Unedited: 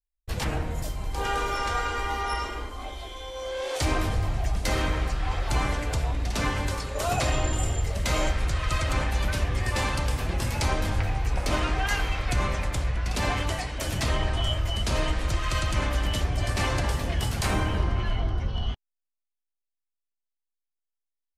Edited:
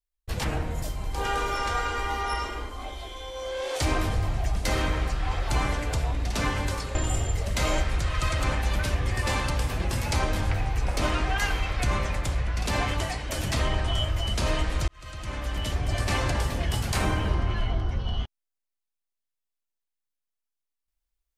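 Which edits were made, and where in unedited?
0:06.95–0:07.44: remove
0:15.37–0:16.42: fade in linear

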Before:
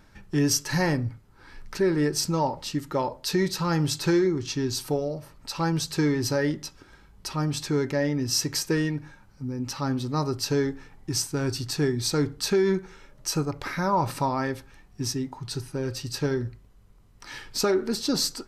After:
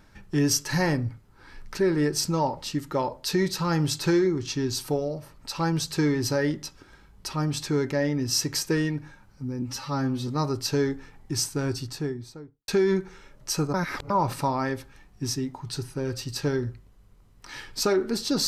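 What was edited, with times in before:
0:09.62–0:10.06: time-stretch 1.5×
0:11.28–0:12.46: fade out and dull
0:13.52–0:13.88: reverse

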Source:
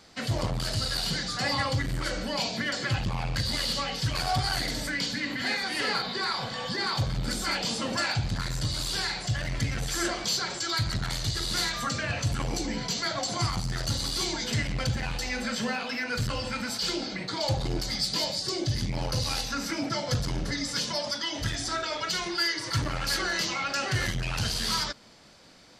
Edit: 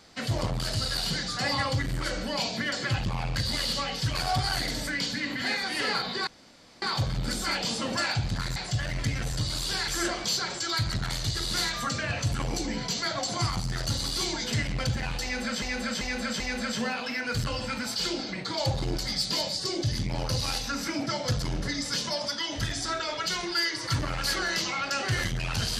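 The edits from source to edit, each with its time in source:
0:06.27–0:06.82: fill with room tone
0:08.56–0:09.12: move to 0:09.88
0:15.23–0:15.62: repeat, 4 plays

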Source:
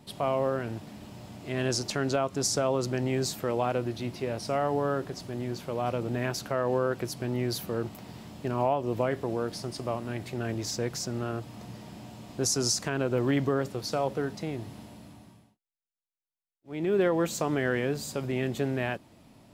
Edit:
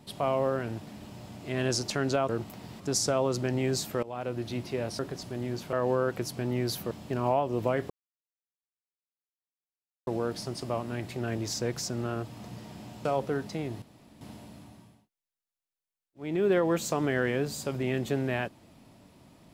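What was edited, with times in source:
0:03.52–0:03.98: fade in, from −19 dB
0:04.48–0:04.97: remove
0:05.71–0:06.56: remove
0:07.74–0:08.25: move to 0:02.29
0:09.24: splice in silence 2.17 s
0:12.22–0:13.93: remove
0:14.70: splice in room tone 0.39 s

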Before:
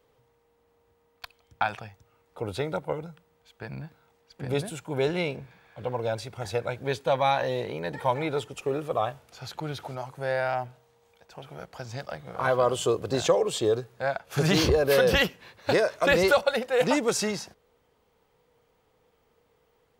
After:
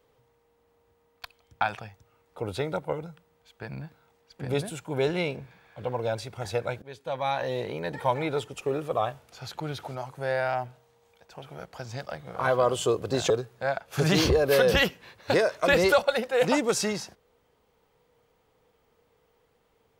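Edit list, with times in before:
0:06.82–0:07.67: fade in, from −20.5 dB
0:13.30–0:13.69: remove

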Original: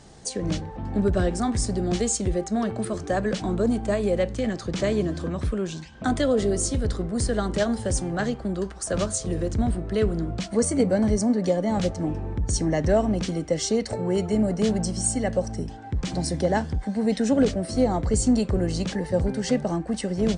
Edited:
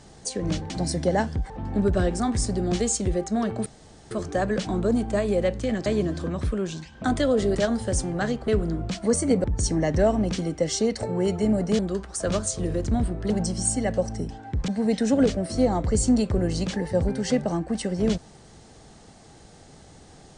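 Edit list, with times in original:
0:02.86: splice in room tone 0.45 s
0:04.61–0:04.86: remove
0:06.55–0:07.53: remove
0:08.46–0:09.97: move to 0:14.69
0:10.93–0:12.34: remove
0:16.07–0:16.87: move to 0:00.70

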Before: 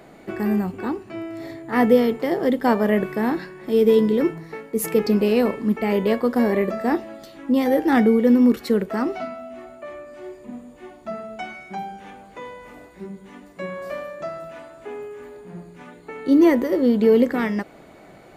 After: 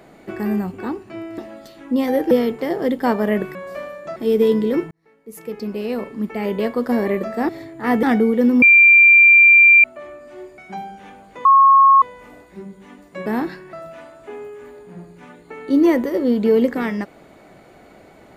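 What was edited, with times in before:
0:01.38–0:01.92: swap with 0:06.96–0:07.89
0:03.16–0:03.63: swap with 0:13.70–0:14.31
0:04.38–0:06.39: fade in
0:08.48–0:09.70: beep over 2,370 Hz −6 dBFS
0:10.44–0:11.59: remove
0:12.46: insert tone 1,090 Hz −7 dBFS 0.57 s

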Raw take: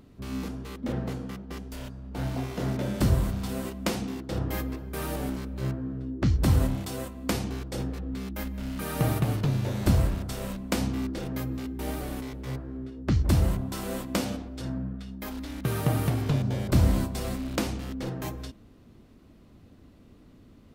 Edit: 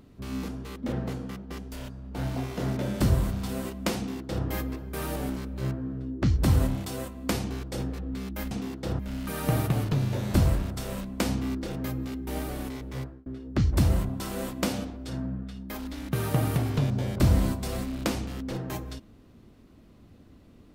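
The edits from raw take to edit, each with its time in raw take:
0:03.97–0:04.45: duplicate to 0:08.51
0:12.50–0:12.78: fade out

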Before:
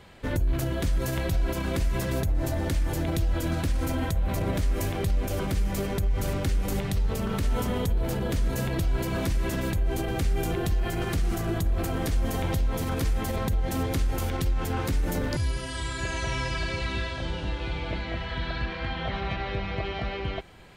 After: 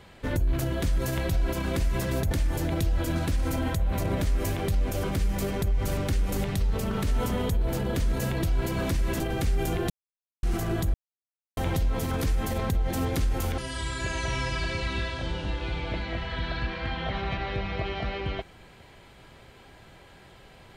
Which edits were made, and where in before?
0:02.31–0:02.67: remove
0:09.56–0:09.98: remove
0:10.68–0:11.21: silence
0:11.72–0:12.35: silence
0:14.36–0:15.57: remove

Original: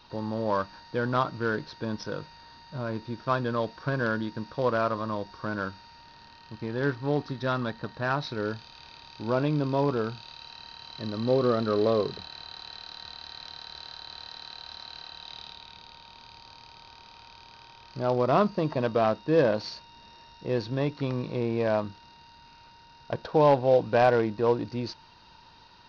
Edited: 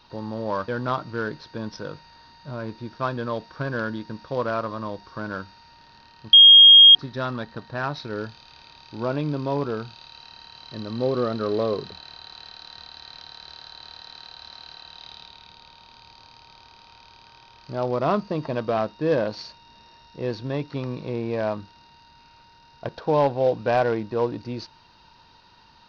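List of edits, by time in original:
0:00.68–0:00.95: remove
0:06.60–0:07.22: beep over 3,250 Hz −6 dBFS

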